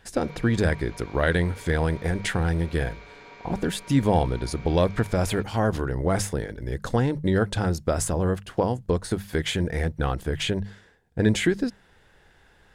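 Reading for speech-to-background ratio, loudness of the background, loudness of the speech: 20.0 dB, −45.5 LKFS, −25.5 LKFS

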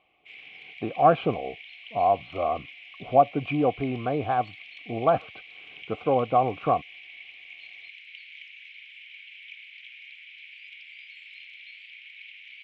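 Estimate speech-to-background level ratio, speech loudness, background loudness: 18.0 dB, −25.5 LKFS, −43.5 LKFS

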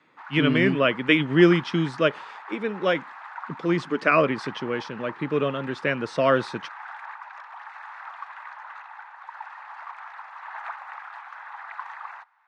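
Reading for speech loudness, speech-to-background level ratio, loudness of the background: −23.5 LKFS, 16.5 dB, −40.0 LKFS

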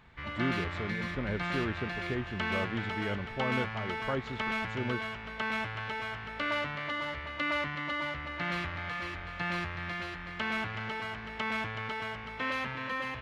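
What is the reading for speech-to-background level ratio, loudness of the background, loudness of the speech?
−2.5 dB, −35.0 LKFS, −37.5 LKFS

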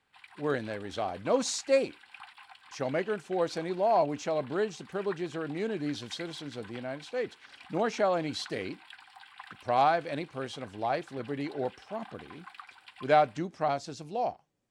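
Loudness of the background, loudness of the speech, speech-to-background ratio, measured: −51.0 LKFS, −31.5 LKFS, 19.5 dB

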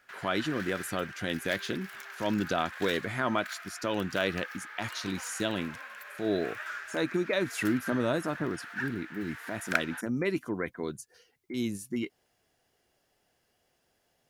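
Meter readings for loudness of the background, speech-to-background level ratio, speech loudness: −40.5 LKFS, 7.5 dB, −33.0 LKFS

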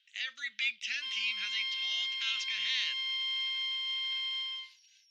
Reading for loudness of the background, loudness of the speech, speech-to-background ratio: −33.0 LKFS, −34.5 LKFS, −1.5 dB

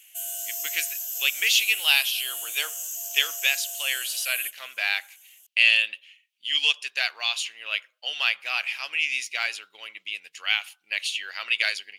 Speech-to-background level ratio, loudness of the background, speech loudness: 6.0 dB, −30.5 LKFS, −24.5 LKFS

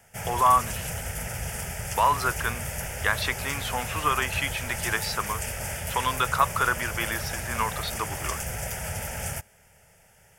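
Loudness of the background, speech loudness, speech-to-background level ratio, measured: −32.0 LKFS, −27.0 LKFS, 5.0 dB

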